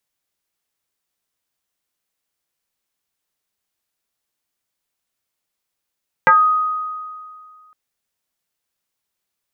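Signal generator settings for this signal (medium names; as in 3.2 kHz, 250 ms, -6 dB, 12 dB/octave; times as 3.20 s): FM tone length 1.46 s, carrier 1.25 kHz, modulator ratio 0.29, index 2.2, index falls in 0.25 s exponential, decay 2.12 s, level -6.5 dB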